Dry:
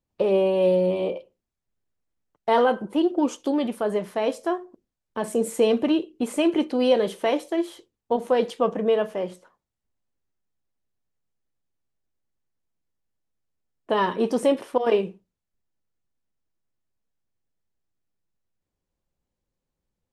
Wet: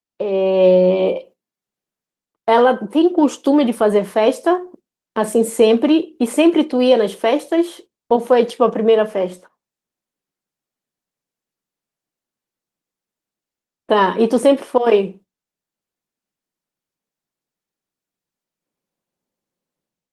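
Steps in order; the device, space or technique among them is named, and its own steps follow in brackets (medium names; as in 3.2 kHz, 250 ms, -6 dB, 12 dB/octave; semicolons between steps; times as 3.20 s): video call (high-pass 160 Hz 24 dB/octave; level rider gain up to 16 dB; gate -39 dBFS, range -11 dB; trim -1 dB; Opus 24 kbps 48 kHz)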